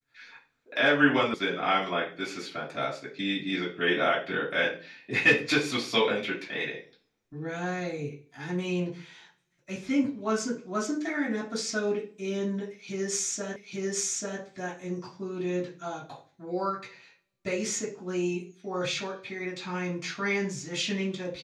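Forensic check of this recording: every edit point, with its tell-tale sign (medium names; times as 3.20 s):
1.34 s: sound stops dead
13.56 s: repeat of the last 0.84 s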